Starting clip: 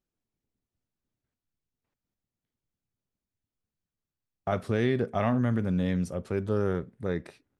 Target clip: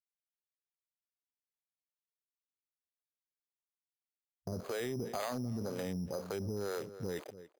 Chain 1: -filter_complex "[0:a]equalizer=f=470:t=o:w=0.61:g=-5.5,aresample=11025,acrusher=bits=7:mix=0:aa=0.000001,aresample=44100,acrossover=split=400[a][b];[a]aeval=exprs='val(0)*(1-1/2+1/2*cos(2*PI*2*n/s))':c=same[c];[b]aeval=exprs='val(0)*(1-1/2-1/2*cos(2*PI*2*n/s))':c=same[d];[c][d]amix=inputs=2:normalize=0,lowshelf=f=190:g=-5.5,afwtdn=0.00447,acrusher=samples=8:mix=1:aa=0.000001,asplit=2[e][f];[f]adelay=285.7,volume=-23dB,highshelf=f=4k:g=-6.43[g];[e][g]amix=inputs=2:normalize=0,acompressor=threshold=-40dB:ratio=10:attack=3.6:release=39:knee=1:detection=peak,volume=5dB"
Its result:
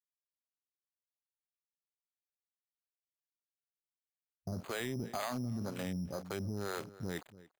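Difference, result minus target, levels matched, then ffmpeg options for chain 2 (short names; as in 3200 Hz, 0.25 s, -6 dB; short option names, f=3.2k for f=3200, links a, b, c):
500 Hz band -3.0 dB
-filter_complex "[0:a]equalizer=f=470:t=o:w=0.61:g=5,aresample=11025,acrusher=bits=7:mix=0:aa=0.000001,aresample=44100,acrossover=split=400[a][b];[a]aeval=exprs='val(0)*(1-1/2+1/2*cos(2*PI*2*n/s))':c=same[c];[b]aeval=exprs='val(0)*(1-1/2-1/2*cos(2*PI*2*n/s))':c=same[d];[c][d]amix=inputs=2:normalize=0,lowshelf=f=190:g=-5.5,afwtdn=0.00447,acrusher=samples=8:mix=1:aa=0.000001,asplit=2[e][f];[f]adelay=285.7,volume=-23dB,highshelf=f=4k:g=-6.43[g];[e][g]amix=inputs=2:normalize=0,acompressor=threshold=-40dB:ratio=10:attack=3.6:release=39:knee=1:detection=peak,volume=5dB"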